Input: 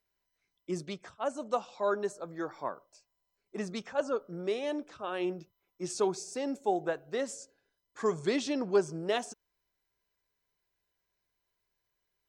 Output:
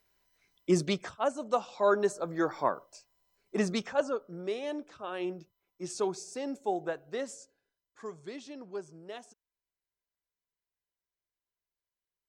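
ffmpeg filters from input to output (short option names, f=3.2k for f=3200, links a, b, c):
-af "volume=16.5dB,afade=t=out:st=0.98:d=0.37:silence=0.354813,afade=t=in:st=1.35:d=1.12:silence=0.446684,afade=t=out:st=3.65:d=0.52:silence=0.334965,afade=t=out:st=7.14:d=0.98:silence=0.281838"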